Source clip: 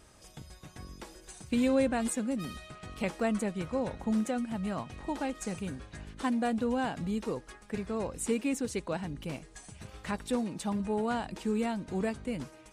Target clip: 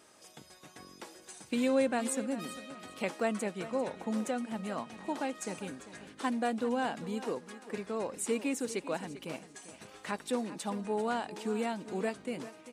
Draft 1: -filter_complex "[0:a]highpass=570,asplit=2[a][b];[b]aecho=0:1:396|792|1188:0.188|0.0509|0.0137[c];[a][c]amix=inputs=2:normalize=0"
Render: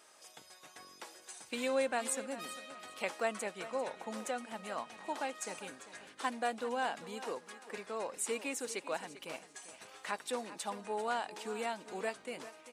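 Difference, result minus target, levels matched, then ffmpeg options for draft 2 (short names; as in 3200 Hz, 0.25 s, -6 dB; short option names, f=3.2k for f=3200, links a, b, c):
250 Hz band -7.5 dB
-filter_complex "[0:a]highpass=260,asplit=2[a][b];[b]aecho=0:1:396|792|1188:0.188|0.0509|0.0137[c];[a][c]amix=inputs=2:normalize=0"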